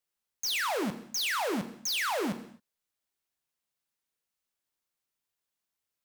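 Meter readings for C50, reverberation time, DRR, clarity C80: 11.5 dB, non-exponential decay, 8.5 dB, 14.0 dB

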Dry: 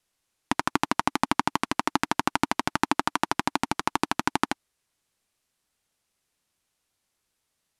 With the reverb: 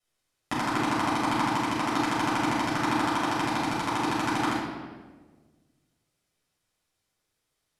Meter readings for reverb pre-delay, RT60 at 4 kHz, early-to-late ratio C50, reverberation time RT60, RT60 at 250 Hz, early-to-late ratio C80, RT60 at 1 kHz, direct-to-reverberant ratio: 7 ms, 1.0 s, −0.5 dB, 1.5 s, 1.8 s, 3.5 dB, 1.2 s, −9.0 dB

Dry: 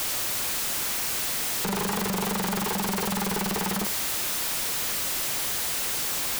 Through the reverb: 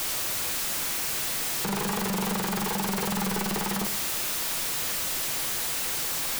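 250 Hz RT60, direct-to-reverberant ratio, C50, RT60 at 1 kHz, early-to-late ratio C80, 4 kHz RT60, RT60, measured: 0.85 s, 9.0 dB, 14.5 dB, 0.60 s, 18.5 dB, 0.40 s, 0.65 s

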